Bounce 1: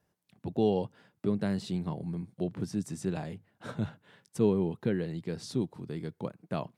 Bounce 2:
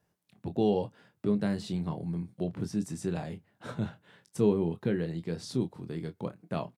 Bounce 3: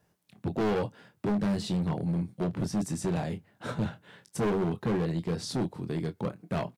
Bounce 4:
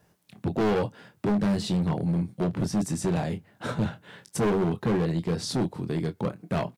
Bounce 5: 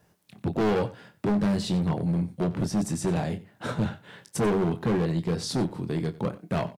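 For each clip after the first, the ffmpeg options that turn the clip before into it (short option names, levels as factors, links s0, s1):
-af "aecho=1:1:24|34:0.335|0.133"
-af "volume=31.6,asoftclip=hard,volume=0.0316,volume=1.88"
-af "alimiter=level_in=1.5:limit=0.0631:level=0:latency=1:release=399,volume=0.668,volume=2.11"
-af "aecho=1:1:92:0.126"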